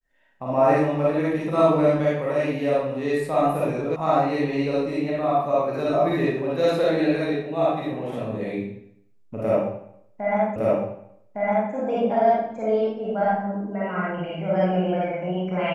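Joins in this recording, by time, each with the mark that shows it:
3.96 s: sound stops dead
10.56 s: repeat of the last 1.16 s

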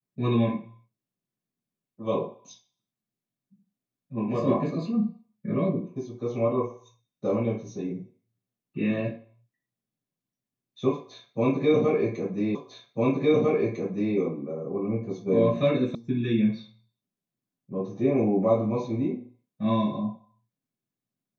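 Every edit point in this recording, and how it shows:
12.55 s: repeat of the last 1.6 s
15.95 s: sound stops dead

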